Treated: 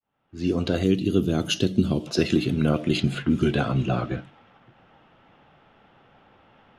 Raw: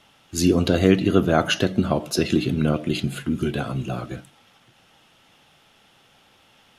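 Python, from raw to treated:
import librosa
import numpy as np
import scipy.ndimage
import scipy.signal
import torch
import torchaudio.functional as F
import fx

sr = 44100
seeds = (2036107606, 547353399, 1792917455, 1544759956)

y = fx.fade_in_head(x, sr, length_s=1.01)
y = fx.env_lowpass(y, sr, base_hz=1500.0, full_db=-16.5)
y = fx.band_shelf(y, sr, hz=1100.0, db=-13.0, octaves=2.3, at=(0.83, 2.07))
y = fx.rider(y, sr, range_db=4, speed_s=0.5)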